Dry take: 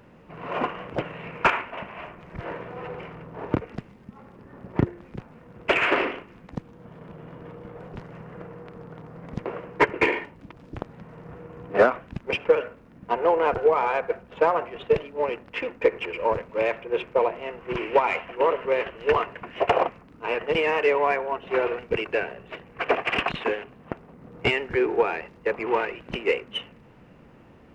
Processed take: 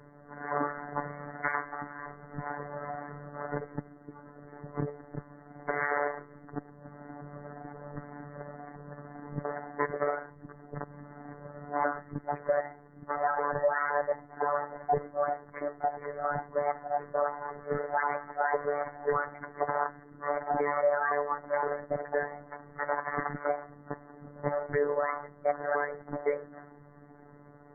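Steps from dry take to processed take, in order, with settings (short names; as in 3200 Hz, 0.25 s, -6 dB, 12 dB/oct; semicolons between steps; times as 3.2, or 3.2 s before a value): repeated pitch sweeps +9 st, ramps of 0.515 s; steep low-pass 2000 Hz 96 dB/oct; limiter -18.5 dBFS, peak gain reduction 11 dB; robotiser 145 Hz; loudest bins only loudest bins 64; gain +1 dB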